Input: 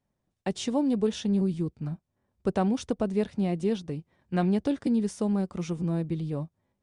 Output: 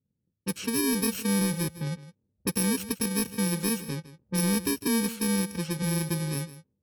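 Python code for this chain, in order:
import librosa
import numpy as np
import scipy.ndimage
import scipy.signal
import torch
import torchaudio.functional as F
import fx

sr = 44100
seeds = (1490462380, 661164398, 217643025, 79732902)

p1 = fx.bit_reversed(x, sr, seeds[0], block=64)
p2 = scipy.signal.sosfilt(scipy.signal.butter(2, 86.0, 'highpass', fs=sr, output='sos'), p1)
p3 = fx.peak_eq(p2, sr, hz=960.0, db=-8.0, octaves=1.1)
p4 = 10.0 ** (-31.0 / 20.0) * np.tanh(p3 / 10.0 ** (-31.0 / 20.0))
p5 = p3 + (p4 * librosa.db_to_amplitude(-5.0))
p6 = fx.env_lowpass(p5, sr, base_hz=370.0, full_db=-24.5)
p7 = p6 + fx.echo_single(p6, sr, ms=158, db=-15.5, dry=0)
y = np.clip(p7, -10.0 ** (-20.0 / 20.0), 10.0 ** (-20.0 / 20.0))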